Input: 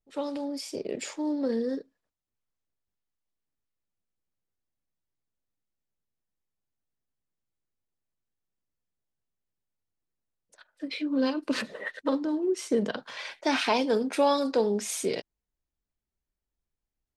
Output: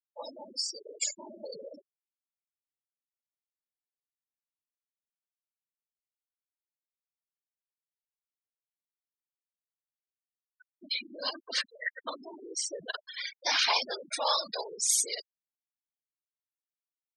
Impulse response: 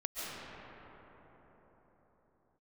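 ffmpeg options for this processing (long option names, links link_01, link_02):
-filter_complex "[0:a]firequalizer=gain_entry='entry(110,0);entry(430,5);entry(1000,5);entry(4500,12);entry(7300,10)':delay=0.05:min_phase=1,afftfilt=real='hypot(re,im)*cos(2*PI*random(0))':imag='hypot(re,im)*sin(2*PI*random(1))':win_size=512:overlap=0.75,acrossover=split=730[link_01][link_02];[link_01]alimiter=level_in=18.5dB:limit=-24dB:level=0:latency=1:release=79,volume=-18.5dB[link_03];[link_03][link_02]amix=inputs=2:normalize=0,equalizer=frequency=7400:width_type=o:width=1.4:gain=4.5,bandreject=frequency=2600:width=13,afftfilt=real='re*gte(hypot(re,im),0.0316)':imag='im*gte(hypot(re,im),0.0316)':win_size=1024:overlap=0.75"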